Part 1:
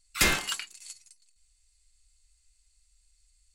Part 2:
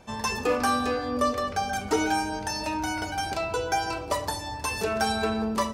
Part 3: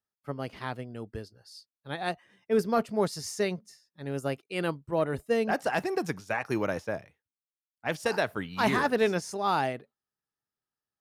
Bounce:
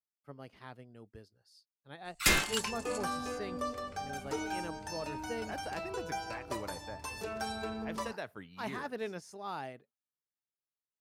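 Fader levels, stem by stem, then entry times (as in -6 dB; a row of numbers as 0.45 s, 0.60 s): -2.5 dB, -12.0 dB, -13.5 dB; 2.05 s, 2.40 s, 0.00 s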